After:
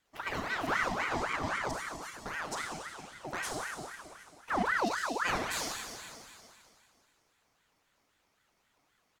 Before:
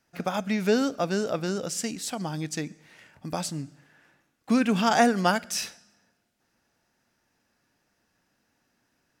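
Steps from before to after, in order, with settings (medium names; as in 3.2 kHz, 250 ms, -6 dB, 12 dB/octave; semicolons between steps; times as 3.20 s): 1.71–2.26 s: inharmonic resonator 330 Hz, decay 0.28 s, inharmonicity 0.008; in parallel at -3 dB: compression, threshold -35 dBFS, peak gain reduction 18 dB; on the sum: saturation -18.5 dBFS, distortion -13 dB; 4.65–5.22 s: spectral selection erased 360–3000 Hz; on a send: delay 758 ms -24 dB; on the sum: Schroeder reverb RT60 2.3 s, combs from 31 ms, DRR -1 dB; ring modulator with a swept carrier 1.1 kHz, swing 60%, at 3.8 Hz; trim -7 dB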